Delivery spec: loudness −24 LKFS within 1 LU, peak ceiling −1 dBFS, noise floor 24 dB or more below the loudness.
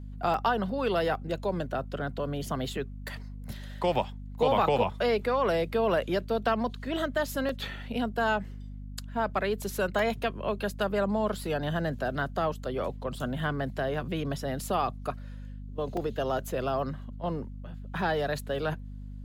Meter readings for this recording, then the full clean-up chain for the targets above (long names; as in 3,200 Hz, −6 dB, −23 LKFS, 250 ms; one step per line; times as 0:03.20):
number of dropouts 4; longest dropout 2.7 ms; mains hum 50 Hz; hum harmonics up to 250 Hz; level of the hum −38 dBFS; integrated loudness −30.5 LKFS; sample peak −13.5 dBFS; target loudness −24.0 LKFS
→ repair the gap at 0:00.34/0:07.49/0:09.99/0:15.97, 2.7 ms
mains-hum notches 50/100/150/200/250 Hz
level +6.5 dB